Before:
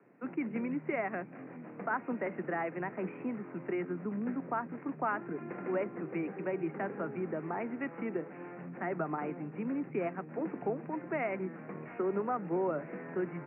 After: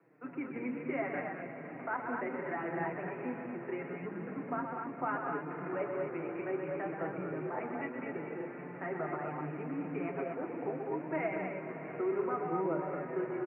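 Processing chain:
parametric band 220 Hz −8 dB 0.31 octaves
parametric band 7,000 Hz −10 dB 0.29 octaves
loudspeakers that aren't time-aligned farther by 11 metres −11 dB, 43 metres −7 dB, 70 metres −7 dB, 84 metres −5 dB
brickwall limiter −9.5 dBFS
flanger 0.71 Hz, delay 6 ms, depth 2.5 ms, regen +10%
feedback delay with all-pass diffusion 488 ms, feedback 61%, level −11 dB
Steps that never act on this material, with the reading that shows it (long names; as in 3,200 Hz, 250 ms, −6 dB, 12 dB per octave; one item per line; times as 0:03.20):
parametric band 7,000 Hz: nothing at its input above 2,600 Hz
brickwall limiter −9.5 dBFS: peak of its input −19.0 dBFS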